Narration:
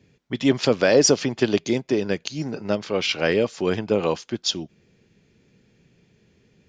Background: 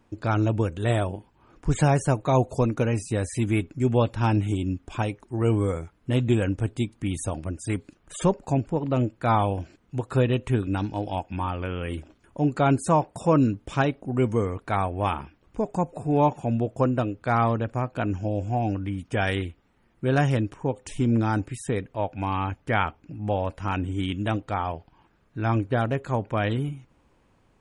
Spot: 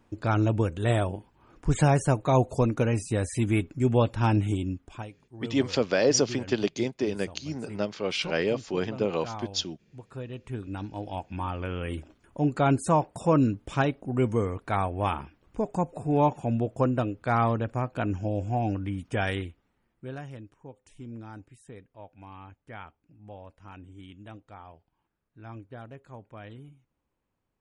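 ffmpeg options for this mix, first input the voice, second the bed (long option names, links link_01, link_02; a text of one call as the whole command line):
ffmpeg -i stem1.wav -i stem2.wav -filter_complex "[0:a]adelay=5100,volume=-6dB[link_01];[1:a]volume=13.5dB,afade=type=out:start_time=4.48:duration=0.63:silence=0.16788,afade=type=in:start_time=10.28:duration=1.48:silence=0.188365,afade=type=out:start_time=19.07:duration=1.14:silence=0.141254[link_02];[link_01][link_02]amix=inputs=2:normalize=0" out.wav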